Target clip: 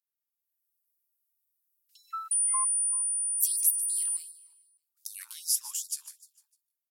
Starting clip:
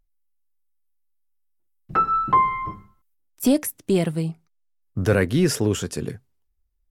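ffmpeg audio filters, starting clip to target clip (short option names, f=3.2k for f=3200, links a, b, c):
-filter_complex "[0:a]firequalizer=gain_entry='entry(640,0);entry(1600,-24);entry(4800,-3);entry(12000,8)':delay=0.05:min_phase=1,asettb=1/sr,asplit=3[a][b][c];[a]atrim=end=2.314[d];[b]atrim=start=2.31:end=4.17,asetpts=PTS-STARTPTS,afade=t=in:d=0.004:c=qsin,afade=t=out:st=1.856:d=0.004:c=qsin,aeval=exprs='val(0)+0.0562*sin(2*PI*9400*n/s)':c=same[e];[c]atrim=start=4.166[f];[d][e]acrossfade=d=0.004:c1=hsin:c2=qsin[g];[g][f]acrossfade=d=0.004:c1=qsin:c2=hsin,dynaudnorm=f=150:g=7:m=11.5dB,aecho=1:1:151|302|453|604:0.178|0.0747|0.0314|0.0132,afftfilt=real='re*gte(b*sr/1024,830*pow(3700/830,0.5+0.5*sin(2*PI*2.6*pts/sr)))':imag='im*gte(b*sr/1024,830*pow(3700/830,0.5+0.5*sin(2*PI*2.6*pts/sr)))':win_size=1024:overlap=0.75,volume=-8dB"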